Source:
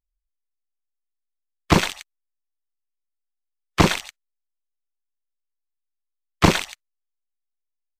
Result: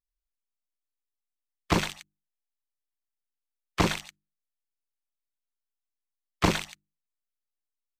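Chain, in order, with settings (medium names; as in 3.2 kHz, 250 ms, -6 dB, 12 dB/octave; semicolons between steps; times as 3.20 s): hum notches 50/100/150/200/250/300/350 Hz; trim -7.5 dB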